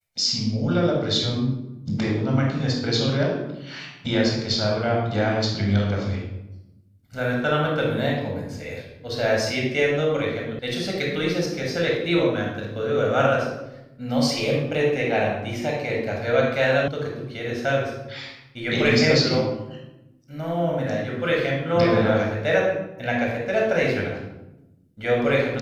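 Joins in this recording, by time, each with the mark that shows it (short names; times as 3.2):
10.59 sound cut off
16.88 sound cut off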